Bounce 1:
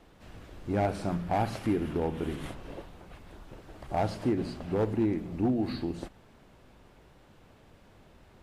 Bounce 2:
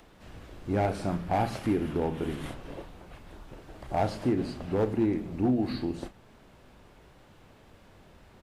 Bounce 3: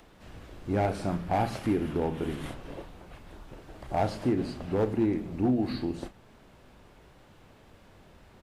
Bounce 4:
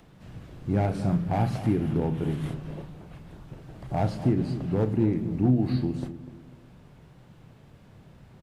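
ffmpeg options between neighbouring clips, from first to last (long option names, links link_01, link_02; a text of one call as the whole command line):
ffmpeg -i in.wav -filter_complex "[0:a]asplit=2[link_01][link_02];[link_02]adelay=32,volume=-11.5dB[link_03];[link_01][link_03]amix=inputs=2:normalize=0,acrossover=split=700[link_04][link_05];[link_05]acompressor=mode=upward:threshold=-59dB:ratio=2.5[link_06];[link_04][link_06]amix=inputs=2:normalize=0,volume=1dB" out.wav
ffmpeg -i in.wav -af anull out.wav
ffmpeg -i in.wav -filter_complex "[0:a]equalizer=frequency=140:width=1.2:gain=14,asplit=2[link_01][link_02];[link_02]adelay=247,lowpass=frequency=880:poles=1,volume=-11.5dB,asplit=2[link_03][link_04];[link_04]adelay=247,lowpass=frequency=880:poles=1,volume=0.39,asplit=2[link_05][link_06];[link_06]adelay=247,lowpass=frequency=880:poles=1,volume=0.39,asplit=2[link_07][link_08];[link_08]adelay=247,lowpass=frequency=880:poles=1,volume=0.39[link_09];[link_01][link_03][link_05][link_07][link_09]amix=inputs=5:normalize=0,volume=-2.5dB" out.wav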